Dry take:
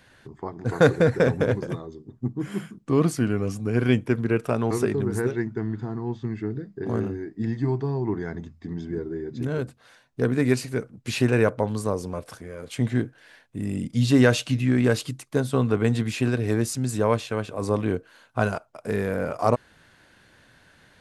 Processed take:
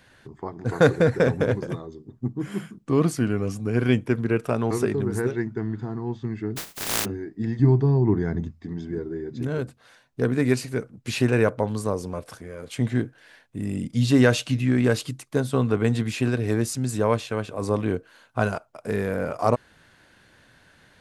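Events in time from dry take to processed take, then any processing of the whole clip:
6.56–7.04 spectral contrast lowered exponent 0.11
7.59–8.51 low shelf 330 Hz +10 dB

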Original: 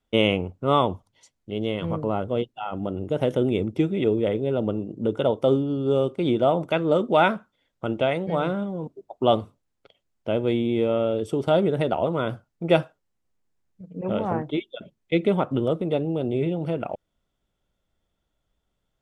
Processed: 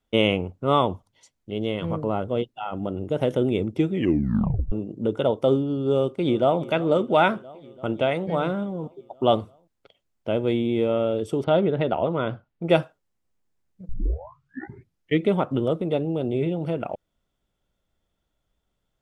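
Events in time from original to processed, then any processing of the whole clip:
3.92 tape stop 0.80 s
5.93–6.61 echo throw 0.34 s, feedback 75%, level -18 dB
11.44–12.67 LPF 3900 Hz 24 dB/oct
13.89 tape start 1.36 s

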